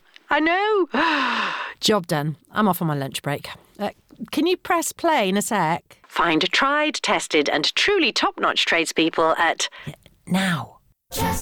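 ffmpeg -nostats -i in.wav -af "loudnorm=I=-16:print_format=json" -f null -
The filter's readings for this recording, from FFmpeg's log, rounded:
"input_i" : "-21.0",
"input_tp" : "-8.4",
"input_lra" : "3.8",
"input_thresh" : "-31.4",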